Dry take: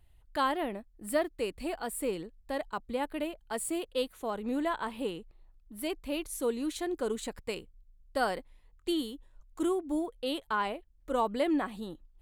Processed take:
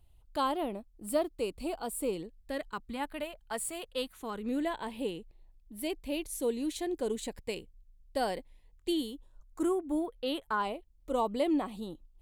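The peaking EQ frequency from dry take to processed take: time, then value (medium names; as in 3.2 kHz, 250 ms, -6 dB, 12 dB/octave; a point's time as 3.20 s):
peaking EQ -12.5 dB 0.55 oct
2.08 s 1.8 kHz
3.27 s 320 Hz
3.88 s 320 Hz
4.74 s 1.3 kHz
9.01 s 1.3 kHz
10.27 s 9.1 kHz
10.68 s 1.6 kHz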